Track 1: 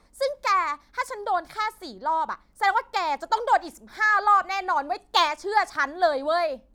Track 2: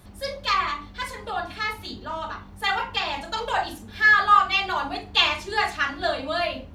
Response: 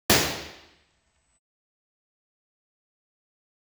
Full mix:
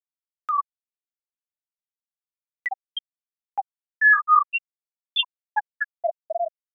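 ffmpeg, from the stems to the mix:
-filter_complex "[0:a]volume=-14.5dB[link_01];[1:a]volume=0.5dB[link_02];[link_01][link_02]amix=inputs=2:normalize=0,afftfilt=real='re*gte(hypot(re,im),0.708)':imag='im*gte(hypot(re,im),0.708)':win_size=1024:overlap=0.75,acompressor=mode=upward:threshold=-19dB:ratio=2.5"

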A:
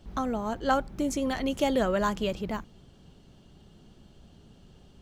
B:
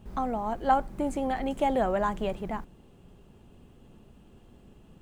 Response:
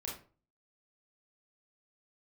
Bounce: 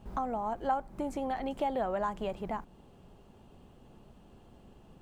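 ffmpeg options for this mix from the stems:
-filter_complex "[0:a]volume=-12.5dB[link_01];[1:a]volume=-3.5dB[link_02];[link_01][link_02]amix=inputs=2:normalize=0,equalizer=frequency=820:width_type=o:width=1.4:gain=6.5,acompressor=threshold=-36dB:ratio=2"

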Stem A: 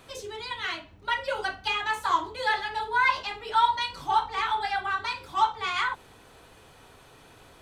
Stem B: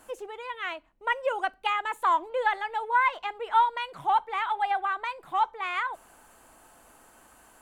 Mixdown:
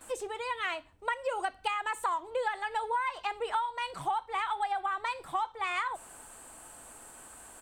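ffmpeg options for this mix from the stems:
ffmpeg -i stem1.wav -i stem2.wav -filter_complex "[0:a]equalizer=frequency=190:width=1.4:gain=-9,volume=-11dB[link_01];[1:a]equalizer=frequency=8300:width=3.8:gain=14.5,adelay=9.2,volume=2dB[link_02];[link_01][link_02]amix=inputs=2:normalize=0,acompressor=threshold=-28dB:ratio=12" out.wav

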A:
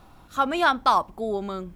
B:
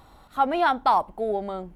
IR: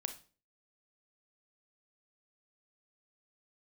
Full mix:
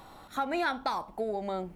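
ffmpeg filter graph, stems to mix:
-filter_complex "[0:a]volume=-10dB,asplit=2[link_01][link_02];[link_02]volume=-7dB[link_03];[1:a]highpass=170,acompressor=threshold=-29dB:ratio=6,volume=2.5dB,asplit=2[link_04][link_05];[link_05]apad=whole_len=77403[link_06];[link_01][link_06]sidechaincompress=threshold=-28dB:ratio=8:attack=16:release=390[link_07];[2:a]atrim=start_sample=2205[link_08];[link_03][link_08]afir=irnorm=-1:irlink=0[link_09];[link_07][link_04][link_09]amix=inputs=3:normalize=0"

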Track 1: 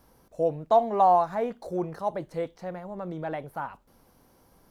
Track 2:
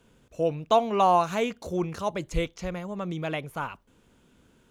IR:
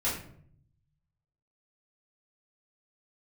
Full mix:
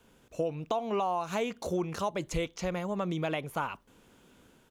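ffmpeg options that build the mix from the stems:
-filter_complex "[0:a]volume=-10.5dB[link_01];[1:a]lowshelf=frequency=160:gain=-8,dynaudnorm=framelen=110:gausssize=5:maxgain=3dB,alimiter=limit=-16dB:level=0:latency=1:release=244,adelay=0.4,volume=0dB[link_02];[link_01][link_02]amix=inputs=2:normalize=0,acompressor=threshold=-28dB:ratio=4"

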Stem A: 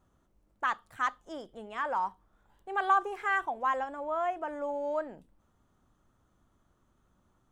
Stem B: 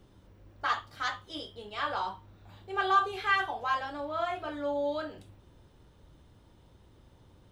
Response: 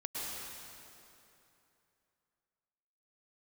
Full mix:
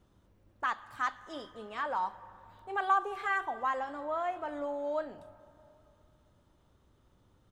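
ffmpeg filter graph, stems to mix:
-filter_complex "[0:a]volume=-3dB,asplit=2[link_01][link_02];[link_02]volume=-18dB[link_03];[1:a]acompressor=threshold=-34dB:ratio=6,adelay=0.6,volume=-9.5dB[link_04];[2:a]atrim=start_sample=2205[link_05];[link_03][link_05]afir=irnorm=-1:irlink=0[link_06];[link_01][link_04][link_06]amix=inputs=3:normalize=0"

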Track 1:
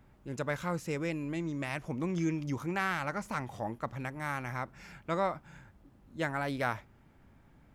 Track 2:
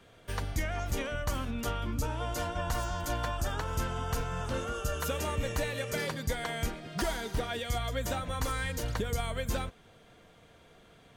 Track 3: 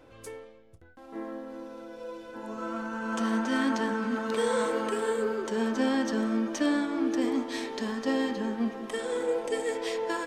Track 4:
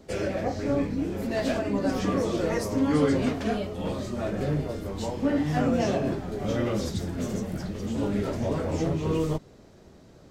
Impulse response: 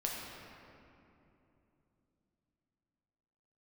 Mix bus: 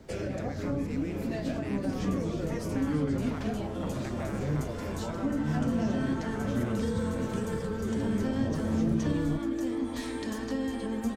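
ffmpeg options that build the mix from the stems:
-filter_complex "[0:a]acompressor=threshold=-41dB:ratio=3,volume=0.5dB,asplit=2[link_01][link_02];[link_02]volume=-6dB[link_03];[1:a]equalizer=frequency=7900:width=0.72:gain=10,acompressor=threshold=-34dB:ratio=2,adelay=1550,volume=-9dB[link_04];[2:a]adelay=2450,volume=-5dB,asplit=2[link_05][link_06];[link_06]volume=-5.5dB[link_07];[3:a]volume=-2dB[link_08];[4:a]atrim=start_sample=2205[link_09];[link_03][link_07]amix=inputs=2:normalize=0[link_10];[link_10][link_09]afir=irnorm=-1:irlink=0[link_11];[link_01][link_04][link_05][link_08][link_11]amix=inputs=5:normalize=0,acrossover=split=270[link_12][link_13];[link_13]acompressor=threshold=-35dB:ratio=6[link_14];[link_12][link_14]amix=inputs=2:normalize=0"

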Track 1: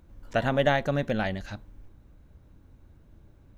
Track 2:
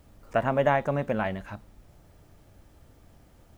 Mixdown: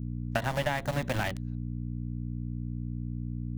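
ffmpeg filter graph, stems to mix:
ffmpeg -i stem1.wav -i stem2.wav -filter_complex "[0:a]volume=2.5dB[link_01];[1:a]aeval=exprs='val(0)*gte(abs(val(0)),0.0531)':channel_layout=same,aeval=exprs='val(0)+0.01*(sin(2*PI*60*n/s)+sin(2*PI*2*60*n/s)/2+sin(2*PI*3*60*n/s)/3+sin(2*PI*4*60*n/s)/4+sin(2*PI*5*60*n/s)/5)':channel_layout=same,equalizer=frequency=125:width_type=o:width=1:gain=8,equalizer=frequency=250:width_type=o:width=1:gain=9,equalizer=frequency=500:width_type=o:width=1:gain=-7,volume=-1,volume=1.5dB,asplit=2[link_02][link_03];[link_03]apad=whole_len=157456[link_04];[link_01][link_04]sidechaingate=range=-33dB:threshold=-28dB:ratio=16:detection=peak[link_05];[link_05][link_02]amix=inputs=2:normalize=0,acompressor=threshold=-26dB:ratio=6" out.wav

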